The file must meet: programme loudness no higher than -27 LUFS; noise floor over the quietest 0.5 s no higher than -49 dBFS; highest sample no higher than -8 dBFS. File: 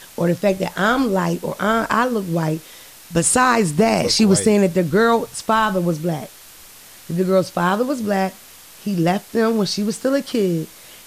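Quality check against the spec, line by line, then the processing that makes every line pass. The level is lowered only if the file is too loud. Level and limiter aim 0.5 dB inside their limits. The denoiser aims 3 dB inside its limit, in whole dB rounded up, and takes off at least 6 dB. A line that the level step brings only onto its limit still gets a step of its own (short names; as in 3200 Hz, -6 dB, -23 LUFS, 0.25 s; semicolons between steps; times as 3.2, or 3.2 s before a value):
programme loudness -19.0 LUFS: fail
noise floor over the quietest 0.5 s -43 dBFS: fail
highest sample -3.5 dBFS: fail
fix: gain -8.5 dB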